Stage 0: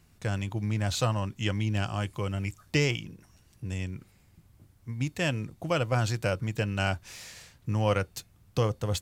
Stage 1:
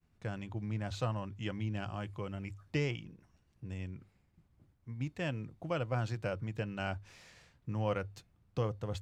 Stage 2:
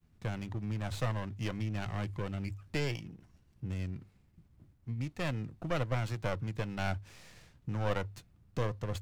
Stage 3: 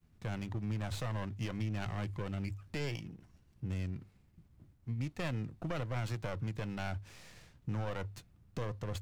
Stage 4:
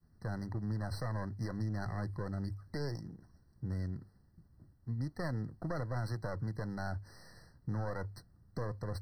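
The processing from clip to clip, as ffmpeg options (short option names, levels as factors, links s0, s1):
-af "aemphasis=mode=reproduction:type=75kf,bandreject=f=50:t=h:w=6,bandreject=f=100:t=h:w=6,agate=range=0.0224:threshold=0.00126:ratio=3:detection=peak,volume=0.447"
-filter_complex "[0:a]acrossover=split=370[s0][s1];[s0]alimiter=level_in=3.55:limit=0.0631:level=0:latency=1:release=448,volume=0.282[s2];[s1]aeval=exprs='max(val(0),0)':c=same[s3];[s2][s3]amix=inputs=2:normalize=0,volume=2"
-af "alimiter=level_in=1.41:limit=0.0631:level=0:latency=1:release=44,volume=0.708"
-af "afftfilt=real='re*eq(mod(floor(b*sr/1024/2000),2),0)':imag='im*eq(mod(floor(b*sr/1024/2000),2),0)':win_size=1024:overlap=0.75"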